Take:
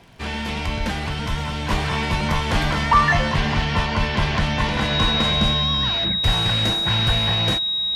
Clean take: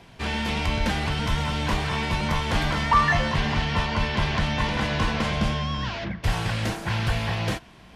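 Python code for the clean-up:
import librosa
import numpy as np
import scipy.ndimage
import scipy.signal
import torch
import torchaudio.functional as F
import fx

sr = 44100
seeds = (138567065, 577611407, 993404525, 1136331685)

y = fx.fix_declick_ar(x, sr, threshold=6.5)
y = fx.notch(y, sr, hz=3800.0, q=30.0)
y = fx.gain(y, sr, db=fx.steps((0.0, 0.0), (1.7, -3.5)))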